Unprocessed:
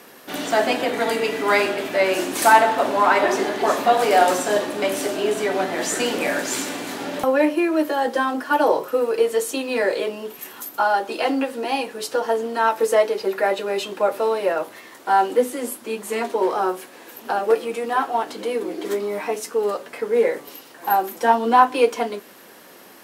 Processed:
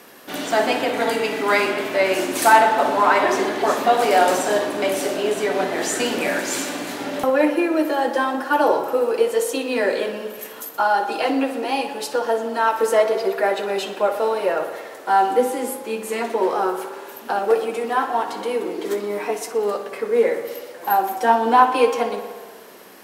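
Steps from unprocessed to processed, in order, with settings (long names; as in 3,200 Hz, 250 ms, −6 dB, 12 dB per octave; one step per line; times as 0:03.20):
tape delay 61 ms, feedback 82%, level −10.5 dB, low-pass 5,300 Hz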